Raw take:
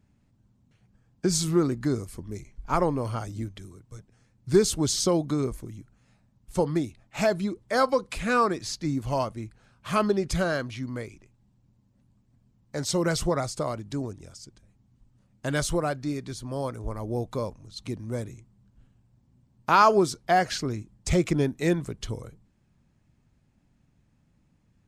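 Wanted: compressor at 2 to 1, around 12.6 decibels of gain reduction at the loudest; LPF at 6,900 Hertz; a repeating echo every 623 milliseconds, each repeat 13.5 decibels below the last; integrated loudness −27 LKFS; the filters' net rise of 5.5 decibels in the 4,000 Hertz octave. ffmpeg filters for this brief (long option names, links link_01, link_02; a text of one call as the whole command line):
ffmpeg -i in.wav -af "lowpass=6900,equalizer=frequency=4000:width_type=o:gain=7.5,acompressor=threshold=-37dB:ratio=2,aecho=1:1:623|1246:0.211|0.0444,volume=8.5dB" out.wav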